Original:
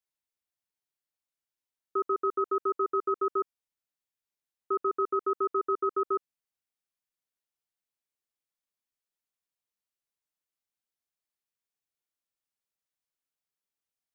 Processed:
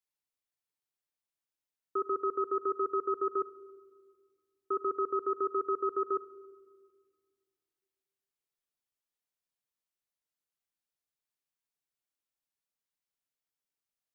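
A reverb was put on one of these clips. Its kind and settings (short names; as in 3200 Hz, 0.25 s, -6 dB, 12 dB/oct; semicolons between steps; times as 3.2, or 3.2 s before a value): shoebox room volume 2800 m³, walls mixed, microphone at 0.39 m; gain -2.5 dB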